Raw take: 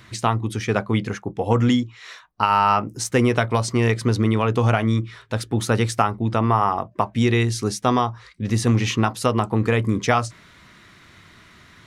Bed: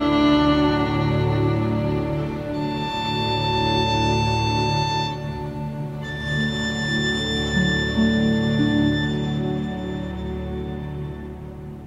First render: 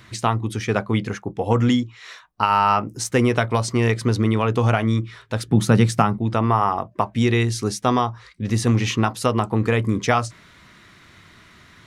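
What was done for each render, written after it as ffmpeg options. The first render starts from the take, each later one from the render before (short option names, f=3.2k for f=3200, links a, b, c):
-filter_complex "[0:a]asettb=1/sr,asplit=3[a][b][c];[a]atrim=end=5.484[d];[b]atrim=start=5.48:end=6.18,asetpts=PTS-STARTPTS,afade=t=in:d=0.004:c=qsin,afade=t=out:st=0.696:d=0.004:c=qsin,equalizer=f=170:t=o:w=0.77:g=15[e];[c]atrim=start=6.176[f];[d][e]acrossfade=d=0.004:c1=hsin:c2=qsin[g];[g][f]acrossfade=d=0.004:c1=qsin:c2=hsin"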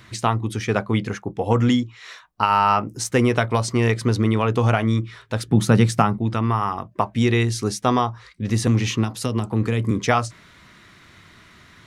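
-filter_complex "[0:a]asettb=1/sr,asplit=3[a][b][c];[a]atrim=end=6.344[d];[b]atrim=start=6.34:end=6.96,asetpts=PTS-STARTPTS,afade=t=in:d=0.004:c=qsin,afade=t=out:st=0.616:d=0.004:c=qsin,equalizer=f=640:t=o:w=1.3:g=-8[e];[c]atrim=start=6.956[f];[d][e]acrossfade=d=0.004:c1=hsin:c2=qsin[g];[g][f]acrossfade=d=0.004:c1=qsin:c2=hsin,asettb=1/sr,asplit=3[h][i][j];[h]atrim=end=8.674[k];[i]atrim=start=8.67:end=9.91,asetpts=PTS-STARTPTS,afade=t=in:d=0.004:c=qsin,afade=t=out:st=1.236:d=0.004:c=qsin,acrossover=split=370|3000[l][m][n];[m]acompressor=threshold=-29dB:ratio=6:attack=3.2:release=140:knee=2.83:detection=peak[o];[l][o][n]amix=inputs=3:normalize=0[p];[j]atrim=start=9.906[q];[k][p]acrossfade=d=0.004:c1=hsin:c2=qsin[r];[r][q]acrossfade=d=0.004:c1=qsin:c2=hsin"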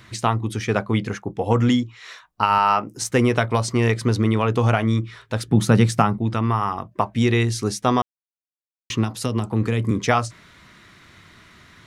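-filter_complex "[0:a]asettb=1/sr,asplit=3[a][b][c];[a]atrim=end=2.584[d];[b]atrim=start=2.58:end=3.02,asetpts=PTS-STARTPTS,afade=t=in:d=0.004:c=qsin,afade=t=out:st=0.436:d=0.004:c=qsin,highpass=f=250:p=1[e];[c]atrim=start=3.016[f];[d][e]acrossfade=d=0.004:c1=hsin:c2=qsin[g];[g][f]acrossfade=d=0.004:c1=qsin:c2=hsin,asplit=3[h][i][j];[h]atrim=end=8.02,asetpts=PTS-STARTPTS,afade=t=out:st=8.016:d=0.004:c=hsin[k];[i]atrim=start=8.02:end=8.9,asetpts=PTS-STARTPTS,volume=0[l];[j]atrim=start=8.9,asetpts=PTS-STARTPTS,afade=t=in:d=0.004:c=hsin[m];[k][l][m]concat=n=3:v=0:a=1"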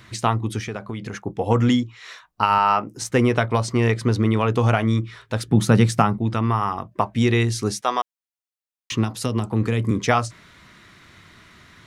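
-filter_complex "[0:a]asplit=3[a][b][c];[a]afade=t=out:st=0.6:d=0.02[d];[b]acompressor=threshold=-27dB:ratio=4:attack=3.2:release=140:knee=1:detection=peak,afade=t=in:st=0.6:d=0.02,afade=t=out:st=1.13:d=0.02[e];[c]afade=t=in:st=1.13:d=0.02[f];[d][e][f]amix=inputs=3:normalize=0,asettb=1/sr,asplit=3[g][h][i];[g]atrim=end=2.544[j];[h]atrim=start=2.54:end=4.34,asetpts=PTS-STARTPTS,afade=t=in:d=0.004:c=qsin,afade=t=out:st=1.796:d=0.004:c=qsin,highshelf=f=4.7k:g=-4.5[k];[i]atrim=start=4.336[l];[j][k]acrossfade=d=0.004:c1=hsin:c2=qsin[m];[m][l]acrossfade=d=0.004:c1=qsin:c2=hsin,asettb=1/sr,asplit=3[n][o][p];[n]atrim=end=7.814[q];[o]atrim=start=7.81:end=8.92,asetpts=PTS-STARTPTS,afade=t=in:d=0.004:c=qsin,afade=t=out:st=1.106:d=0.004:c=qsin,highpass=600[r];[p]atrim=start=8.916[s];[q][r]acrossfade=d=0.004:c1=hsin:c2=qsin[t];[t][s]acrossfade=d=0.004:c1=qsin:c2=hsin"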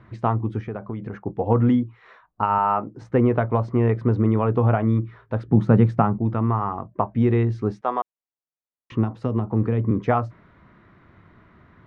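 -af "lowpass=1.1k"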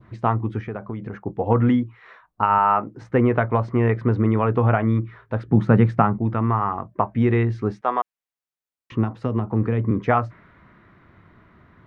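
-af "adynamicequalizer=threshold=0.0112:dfrequency=1900:dqfactor=0.94:tfrequency=1900:tqfactor=0.94:attack=5:release=100:ratio=0.375:range=3.5:mode=boostabove:tftype=bell"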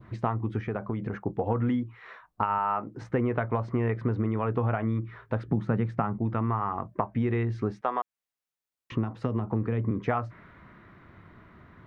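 -af "acompressor=threshold=-25dB:ratio=4"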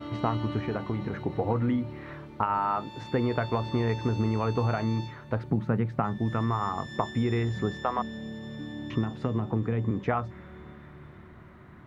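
-filter_complex "[1:a]volume=-19dB[a];[0:a][a]amix=inputs=2:normalize=0"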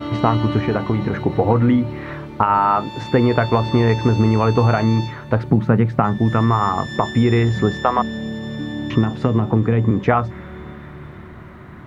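-af "volume=11.5dB,alimiter=limit=-2dB:level=0:latency=1"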